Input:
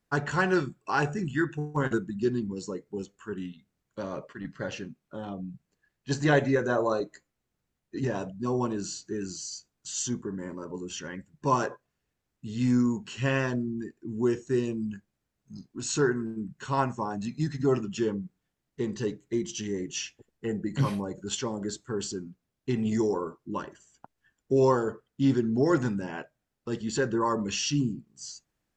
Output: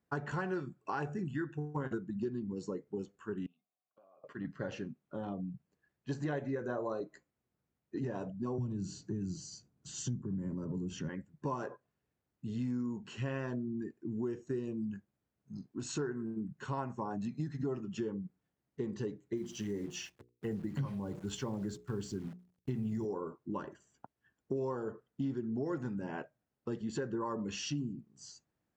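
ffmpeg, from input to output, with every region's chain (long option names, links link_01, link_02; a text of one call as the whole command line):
ffmpeg -i in.wav -filter_complex "[0:a]asettb=1/sr,asplit=3[link_01][link_02][link_03];[link_01]atrim=end=3.464[link_04];[link_02]atrim=start=3.46:end=4.24,asetpts=PTS-STARTPTS,afade=type=in:duration=0.004:curve=qsin,afade=type=out:start_time=0.776:duration=0.004:curve=qsin,asplit=3[link_05][link_06][link_07];[link_05]bandpass=frequency=730:width_type=q:width=8,volume=0dB[link_08];[link_06]bandpass=frequency=1090:width_type=q:width=8,volume=-6dB[link_09];[link_07]bandpass=frequency=2440:width_type=q:width=8,volume=-9dB[link_10];[link_08][link_09][link_10]amix=inputs=3:normalize=0,acompressor=threshold=-60dB:ratio=6:attack=3.2:release=140:knee=1:detection=peak[link_11];[link_03]atrim=start=4.236[link_12];[link_04][link_11]acrossfade=duration=0.004:curve1=hsin:curve2=qsin[link_13];[link_13][link_12]acrossfade=duration=0.004:curve1=qsin:curve2=hsin,asettb=1/sr,asplit=3[link_14][link_15][link_16];[link_14]atrim=end=8.584[link_17];[link_15]atrim=start=8.58:end=11.09,asetpts=PTS-STARTPTS,afade=type=in:duration=0.004:curve=qsin,afade=type=out:start_time=2.506:duration=0.004:curve=qsin,equalizer=frequency=130:width=0.43:gain=13.5,acrossover=split=180|3000[link_18][link_19][link_20];[link_19]acompressor=threshold=-37dB:ratio=5:attack=3.2:release=140:knee=2.83:detection=peak[link_21];[link_18][link_21][link_20]amix=inputs=3:normalize=0[link_22];[link_16]atrim=start=11.086[link_23];[link_17][link_22]acrossfade=duration=0.004:curve1=hsin:curve2=qsin[link_24];[link_24][link_23]acrossfade=duration=0.004:curve1=qsin:curve2=hsin,asettb=1/sr,asplit=3[link_25][link_26][link_27];[link_25]atrim=end=19.364[link_28];[link_26]atrim=start=19.36:end=23.05,asetpts=PTS-STARTPTS,afade=type=in:duration=0.004:curve=qsin,afade=type=out:start_time=3.686:duration=0.004:curve=qsin,asubboost=boost=3.5:cutoff=200,acrusher=bits=9:dc=4:mix=0:aa=0.000001,bandreject=frequency=60:width_type=h:width=6,bandreject=frequency=120:width_type=h:width=6,bandreject=frequency=180:width_type=h:width=6,bandreject=frequency=240:width_type=h:width=6,bandreject=frequency=300:width_type=h:width=6,bandreject=frequency=360:width_type=h:width=6,bandreject=frequency=420:width_type=h:width=6,bandreject=frequency=480:width_type=h:width=6[link_29];[link_27]atrim=start=23.046[link_30];[link_28][link_29]acrossfade=duration=0.004:curve1=hsin:curve2=qsin[link_31];[link_31][link_30]acrossfade=duration=0.004:curve1=qsin:curve2=hsin,highpass=74,highshelf=frequency=2100:gain=-11,acompressor=threshold=-33dB:ratio=5,volume=-1dB" out.wav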